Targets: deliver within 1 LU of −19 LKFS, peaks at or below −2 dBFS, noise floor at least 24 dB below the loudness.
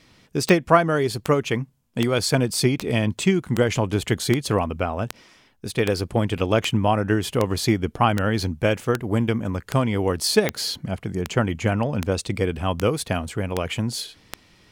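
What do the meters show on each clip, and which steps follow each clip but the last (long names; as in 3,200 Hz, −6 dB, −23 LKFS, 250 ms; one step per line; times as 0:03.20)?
number of clicks 19; integrated loudness −23.0 LKFS; sample peak −1.5 dBFS; target loudness −19.0 LKFS
→ click removal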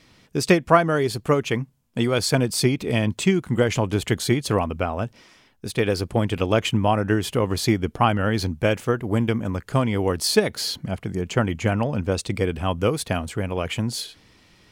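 number of clicks 0; integrated loudness −23.0 LKFS; sample peak −1.5 dBFS; target loudness −19.0 LKFS
→ level +4 dB
brickwall limiter −2 dBFS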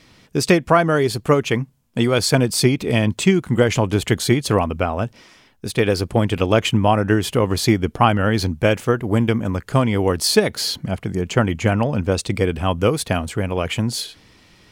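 integrated loudness −19.0 LKFS; sample peak −2.0 dBFS; background noise floor −53 dBFS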